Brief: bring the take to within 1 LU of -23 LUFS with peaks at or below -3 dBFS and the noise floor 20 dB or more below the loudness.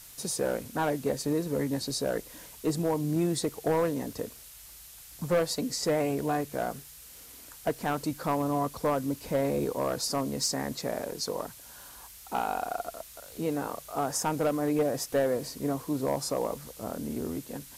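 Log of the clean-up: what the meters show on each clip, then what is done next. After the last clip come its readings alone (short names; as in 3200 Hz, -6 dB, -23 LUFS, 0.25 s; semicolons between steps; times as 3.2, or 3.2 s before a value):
clipped 0.7%; flat tops at -20.0 dBFS; noise floor -49 dBFS; noise floor target -51 dBFS; loudness -30.5 LUFS; peak -20.0 dBFS; loudness target -23.0 LUFS
-> clip repair -20 dBFS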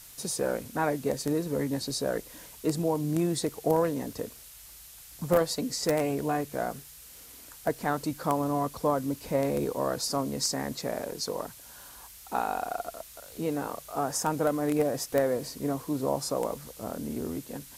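clipped 0.0%; noise floor -49 dBFS; noise floor target -50 dBFS
-> noise print and reduce 6 dB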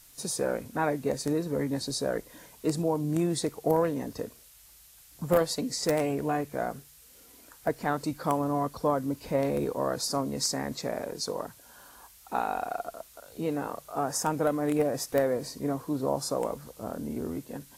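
noise floor -55 dBFS; loudness -30.0 LUFS; peak -11.0 dBFS; loudness target -23.0 LUFS
-> gain +7 dB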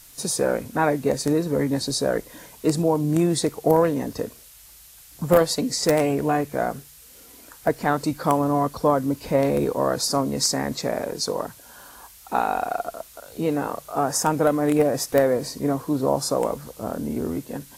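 loudness -23.0 LUFS; peak -4.0 dBFS; noise floor -48 dBFS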